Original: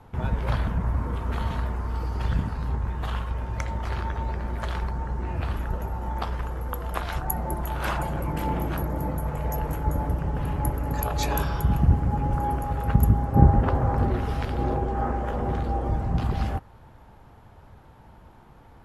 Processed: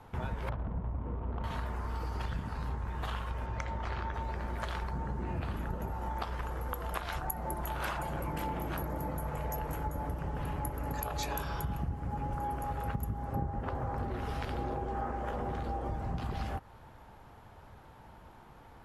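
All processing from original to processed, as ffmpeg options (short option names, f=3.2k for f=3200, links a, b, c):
-filter_complex "[0:a]asettb=1/sr,asplit=3[a][b][c];[a]atrim=end=0.494[d];[b]atrim=start=0.49:end=1.44,asetpts=PTS-STARTPTS,afade=t=in:d=0.004:c=qsin,afade=t=out:st=0.946:d=0.004:c=qsin,lowpass=1.5k,adynamicsmooth=sensitivity=1:basefreq=610[e];[c]atrim=start=1.436[f];[d][e]acrossfade=d=0.004:c1=hsin:c2=qsin[g];[g][f]acrossfade=d=0.004:c1=qsin:c2=hsin,asettb=1/sr,asplit=3[h][i][j];[h]atrim=end=3.464[k];[i]atrim=start=3.46:end=4.14,asetpts=PTS-STARTPTS,afade=t=in:d=0.004:c=qsin,afade=t=out:st=0.676:d=0.004:c=qsin,lowpass=9k,highshelf=f=6k:g=-10[l];[j]atrim=start=4.136[m];[k][l]acrossfade=d=0.004:c1=hsin:c2=qsin[n];[n][m]acrossfade=d=0.004:c1=qsin:c2=hsin,asettb=1/sr,asplit=3[o][p][q];[o]atrim=end=4.934[r];[p]atrim=start=4.93:end=5.92,asetpts=PTS-STARTPTS,afade=t=in:d=0.004:c=qsin,afade=t=out:st=0.986:d=0.004:c=qsin,equalizer=f=190:w=0.54:g=8,bandreject=f=5.5k:w=18[s];[q]atrim=start=5.916[t];[r][s]acrossfade=d=0.004:c1=hsin:c2=qsin[u];[u][t]acrossfade=d=0.004:c1=qsin:c2=hsin,lowshelf=f=400:g=-5.5,acompressor=threshold=-32dB:ratio=6"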